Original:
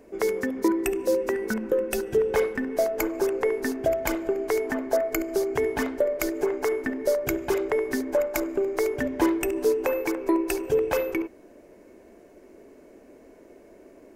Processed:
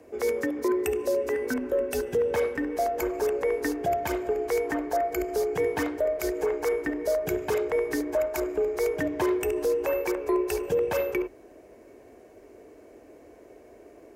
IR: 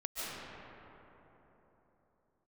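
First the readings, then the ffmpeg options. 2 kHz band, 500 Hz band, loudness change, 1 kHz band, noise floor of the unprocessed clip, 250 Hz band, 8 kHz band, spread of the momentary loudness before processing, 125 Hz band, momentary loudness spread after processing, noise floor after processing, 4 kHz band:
-2.0 dB, -1.0 dB, -1.5 dB, +1.0 dB, -52 dBFS, -3.5 dB, -3.0 dB, 3 LU, 0.0 dB, 2 LU, -52 dBFS, -2.0 dB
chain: -af "alimiter=limit=-17.5dB:level=0:latency=1:release=30,afreqshift=34"

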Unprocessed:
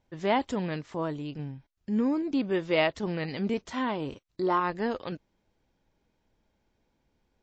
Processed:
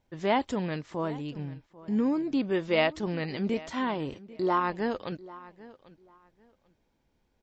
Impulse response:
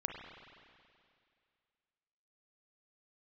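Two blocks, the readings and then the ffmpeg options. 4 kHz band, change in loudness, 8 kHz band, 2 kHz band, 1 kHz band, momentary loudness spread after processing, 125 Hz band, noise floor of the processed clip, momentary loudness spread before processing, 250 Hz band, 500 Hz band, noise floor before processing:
0.0 dB, 0.0 dB, n/a, 0.0 dB, 0.0 dB, 14 LU, 0.0 dB, -73 dBFS, 12 LU, 0.0 dB, 0.0 dB, -76 dBFS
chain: -filter_complex "[0:a]asplit=2[a][b];[b]adelay=792,lowpass=f=4.6k:p=1,volume=-19dB,asplit=2[c][d];[d]adelay=792,lowpass=f=4.6k:p=1,volume=0.21[e];[a][c][e]amix=inputs=3:normalize=0"

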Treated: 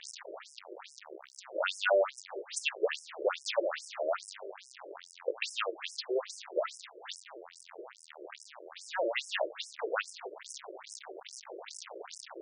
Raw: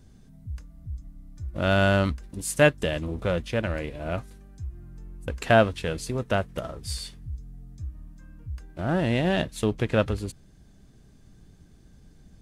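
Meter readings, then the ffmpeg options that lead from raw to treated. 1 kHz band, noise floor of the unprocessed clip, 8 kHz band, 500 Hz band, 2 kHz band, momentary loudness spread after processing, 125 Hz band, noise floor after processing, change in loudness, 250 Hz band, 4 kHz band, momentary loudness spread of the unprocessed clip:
-8.0 dB, -54 dBFS, -4.5 dB, -7.0 dB, -8.0 dB, 17 LU, under -40 dB, -57 dBFS, -10.0 dB, -20.0 dB, -3.5 dB, 19 LU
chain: -af "aeval=exprs='val(0)+0.5*0.0473*sgn(val(0))':c=same,afftfilt=real='re*between(b*sr/1024,430*pow(7300/430,0.5+0.5*sin(2*PI*2.4*pts/sr))/1.41,430*pow(7300/430,0.5+0.5*sin(2*PI*2.4*pts/sr))*1.41)':imag='im*between(b*sr/1024,430*pow(7300/430,0.5+0.5*sin(2*PI*2.4*pts/sr))/1.41,430*pow(7300/430,0.5+0.5*sin(2*PI*2.4*pts/sr))*1.41)':win_size=1024:overlap=0.75"

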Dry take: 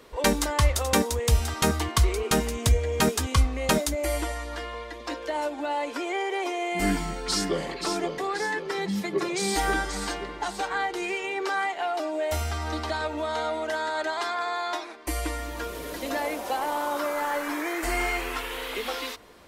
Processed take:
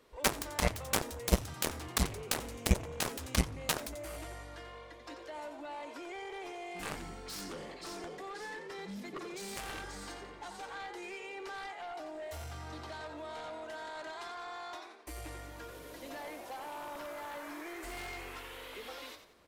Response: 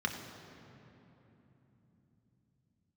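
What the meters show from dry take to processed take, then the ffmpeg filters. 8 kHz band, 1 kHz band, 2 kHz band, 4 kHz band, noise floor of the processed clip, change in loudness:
-9.0 dB, -13.5 dB, -12.0 dB, -10.0 dB, -50 dBFS, -11.5 dB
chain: -filter_complex "[0:a]asplit=5[a][b][c][d][e];[b]adelay=89,afreqshift=47,volume=-9dB[f];[c]adelay=178,afreqshift=94,volume=-18.6dB[g];[d]adelay=267,afreqshift=141,volume=-28.3dB[h];[e]adelay=356,afreqshift=188,volume=-37.9dB[i];[a][f][g][h][i]amix=inputs=5:normalize=0,aeval=exprs='0.376*(cos(1*acos(clip(val(0)/0.376,-1,1)))-cos(1*PI/2))+0.15*(cos(3*acos(clip(val(0)/0.376,-1,1)))-cos(3*PI/2))':c=same,volume=1dB"

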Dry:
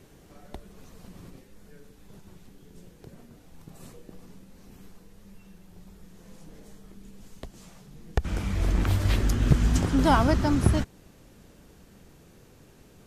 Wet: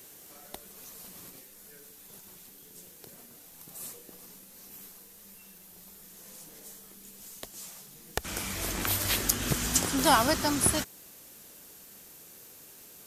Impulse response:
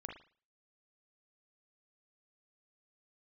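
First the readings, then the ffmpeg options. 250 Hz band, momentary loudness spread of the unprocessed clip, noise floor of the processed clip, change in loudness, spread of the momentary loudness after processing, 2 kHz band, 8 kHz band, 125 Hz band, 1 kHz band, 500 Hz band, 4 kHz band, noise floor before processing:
-6.5 dB, 10 LU, -53 dBFS, -3.0 dB, 22 LU, +2.0 dB, +12.5 dB, -12.5 dB, 0.0 dB, -2.5 dB, +6.5 dB, -55 dBFS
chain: -af "aemphasis=mode=production:type=riaa"

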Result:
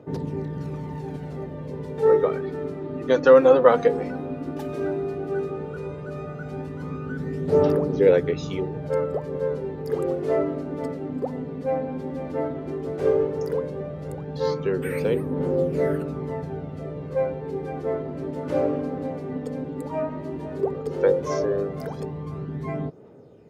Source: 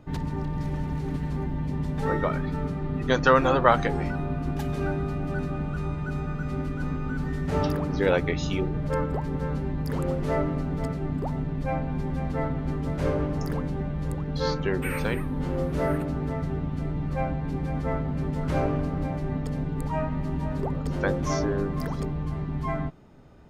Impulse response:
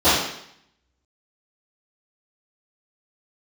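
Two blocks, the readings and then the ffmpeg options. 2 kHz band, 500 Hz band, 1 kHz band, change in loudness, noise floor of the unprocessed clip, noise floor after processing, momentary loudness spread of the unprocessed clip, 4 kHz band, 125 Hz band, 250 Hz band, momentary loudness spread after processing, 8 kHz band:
-3.5 dB, +8.0 dB, -2.0 dB, +2.5 dB, -32 dBFS, -35 dBFS, 6 LU, -4.5 dB, -4.5 dB, -0.5 dB, 14 LU, n/a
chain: -af "highpass=f=93:w=0.5412,highpass=f=93:w=1.3066,equalizer=f=460:w=1.9:g=15,aphaser=in_gain=1:out_gain=1:delay=4.2:decay=0.46:speed=0.13:type=triangular,volume=-5dB"

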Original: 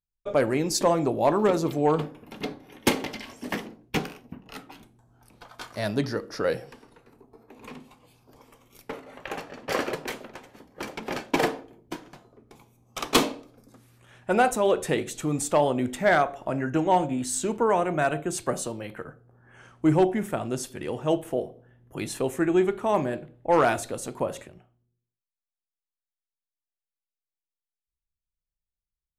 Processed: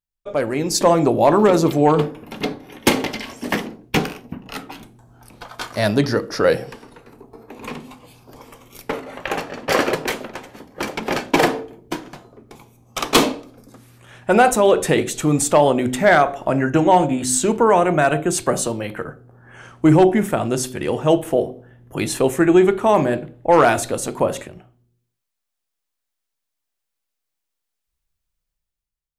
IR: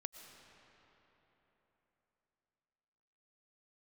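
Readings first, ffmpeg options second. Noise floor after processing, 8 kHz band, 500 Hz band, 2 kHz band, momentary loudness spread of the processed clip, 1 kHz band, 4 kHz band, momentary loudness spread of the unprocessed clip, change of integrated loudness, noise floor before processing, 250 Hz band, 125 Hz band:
-80 dBFS, +9.0 dB, +8.0 dB, +8.0 dB, 18 LU, +8.0 dB, +8.0 dB, 19 LU, +8.0 dB, under -85 dBFS, +8.5 dB, +9.0 dB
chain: -af "dynaudnorm=f=170:g=9:m=11.5dB,bandreject=f=63.6:t=h:w=4,bandreject=f=127.2:t=h:w=4,bandreject=f=190.8:t=h:w=4,bandreject=f=254.4:t=h:w=4,bandreject=f=318:t=h:w=4,bandreject=f=381.6:t=h:w=4,bandreject=f=445.2:t=h:w=4,alimiter=level_in=4dB:limit=-1dB:release=50:level=0:latency=1,volume=-3.5dB"

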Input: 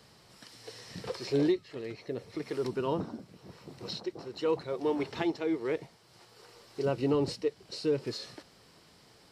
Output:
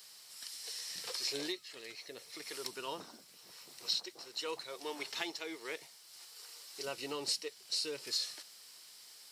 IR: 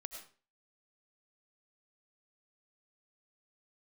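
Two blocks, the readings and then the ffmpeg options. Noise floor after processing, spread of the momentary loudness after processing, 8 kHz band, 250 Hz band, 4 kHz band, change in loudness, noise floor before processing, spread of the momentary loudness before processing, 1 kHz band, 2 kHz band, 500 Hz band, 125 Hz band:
-58 dBFS, 17 LU, n/a, -16.5 dB, +6.0 dB, -6.5 dB, -60 dBFS, 18 LU, -7.0 dB, -0.5 dB, -13.5 dB, -23.5 dB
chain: -af "aderivative,volume=10.5dB"

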